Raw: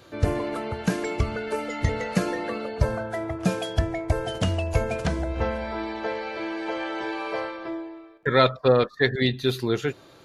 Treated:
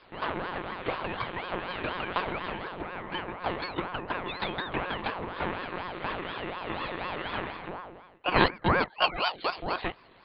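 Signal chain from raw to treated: LPF 3100 Hz 12 dB/oct; tilt +3 dB/oct; 2.72–3.12 compressor, threshold -30 dBFS, peak gain reduction 7.5 dB; monotone LPC vocoder at 8 kHz 180 Hz; ring modulator with a swept carrier 710 Hz, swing 55%, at 4.1 Hz

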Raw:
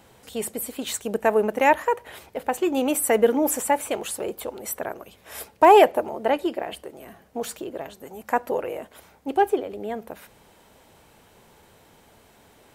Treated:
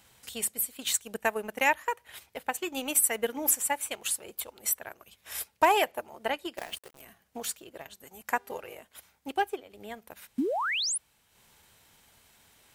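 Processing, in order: passive tone stack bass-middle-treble 5-5-5; 6.57–7.01 companded quantiser 4-bit; 8.31–8.74 buzz 400 Hz, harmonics 31, -61 dBFS -7 dB/oct; 10.38–10.98 painted sound rise 230–11000 Hz -35 dBFS; transient shaper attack +5 dB, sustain -7 dB; gain +5.5 dB

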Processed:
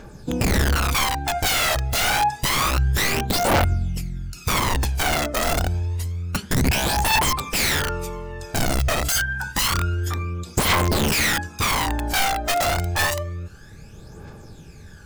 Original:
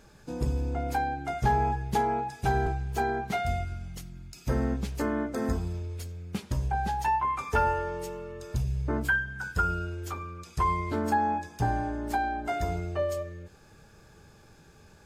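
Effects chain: wrapped overs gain 25 dB; phaser 0.28 Hz, delay 1.6 ms, feedback 62%; gain +7 dB

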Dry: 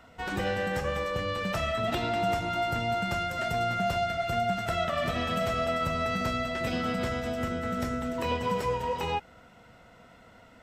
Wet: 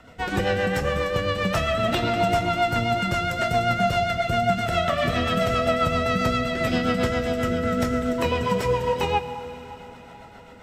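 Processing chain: rotary speaker horn 7.5 Hz; plate-style reverb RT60 4.9 s, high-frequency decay 0.95×, DRR 11 dB; gain +8.5 dB

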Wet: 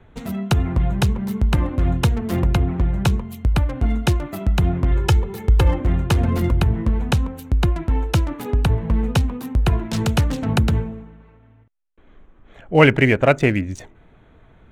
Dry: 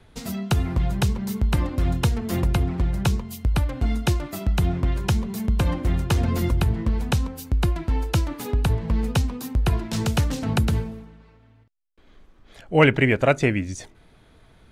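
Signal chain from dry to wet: Wiener smoothing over 9 samples; 4.91–5.81 comb 2.3 ms, depth 77%; gain +3.5 dB

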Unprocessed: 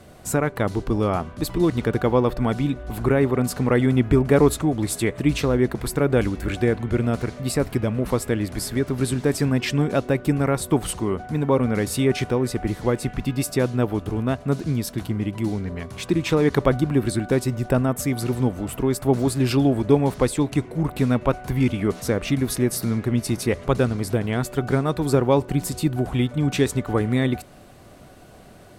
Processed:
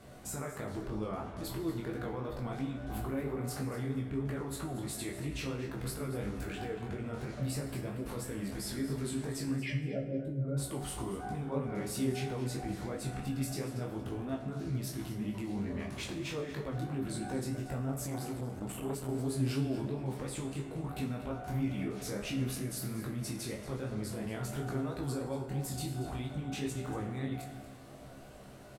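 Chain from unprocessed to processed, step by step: 9.56–10.57 spectral contrast raised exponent 2.4; compressor, threshold -24 dBFS, peak gain reduction 13 dB; limiter -24 dBFS, peak gain reduction 10 dB; resonator 67 Hz, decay 0.23 s, harmonics all, mix 90%; chorus 3 Hz, delay 18 ms, depth 7.9 ms; feedback echo 0.234 s, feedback 22%, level -14 dB; reverb RT60 1.5 s, pre-delay 8 ms, DRR 6.5 dB; 18.06–19.09 core saturation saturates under 580 Hz; gain +3 dB

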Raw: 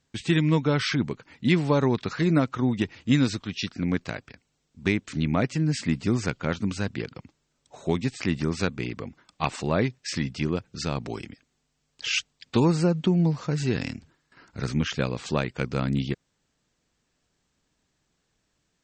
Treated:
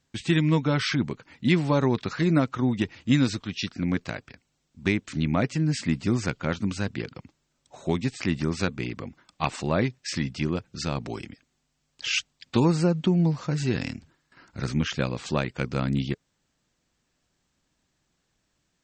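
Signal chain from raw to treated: notch 440 Hz, Q 12

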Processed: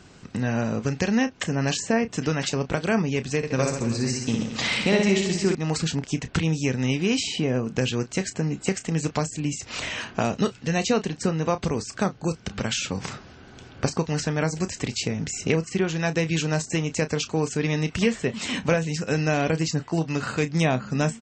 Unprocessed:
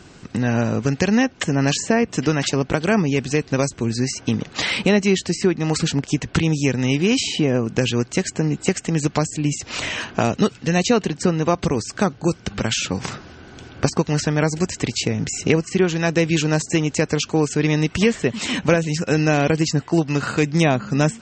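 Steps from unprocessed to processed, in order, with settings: bell 330 Hz -4 dB 0.29 oct; doubler 31 ms -12 dB; 3.37–5.55 reverse bouncing-ball echo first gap 60 ms, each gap 1.2×, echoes 5; gain -5 dB

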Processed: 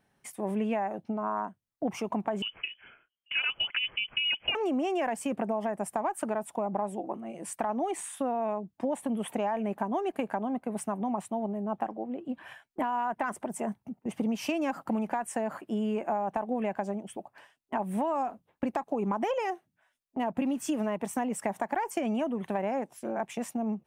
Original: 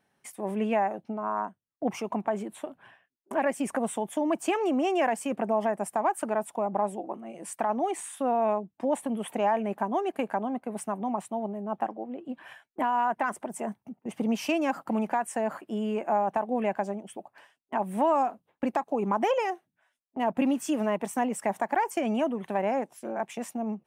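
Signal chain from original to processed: low shelf 110 Hz +11.5 dB; compressor, threshold -26 dBFS, peak gain reduction 7 dB; 2.42–4.55 inverted band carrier 3200 Hz

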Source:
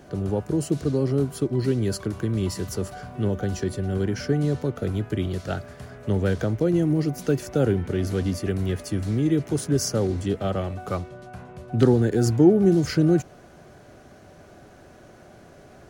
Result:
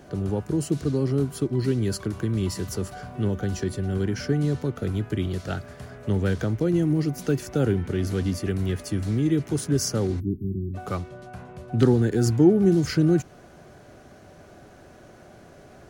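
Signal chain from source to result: spectral delete 10.2–10.74, 390–12000 Hz; dynamic EQ 590 Hz, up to -5 dB, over -37 dBFS, Q 1.7

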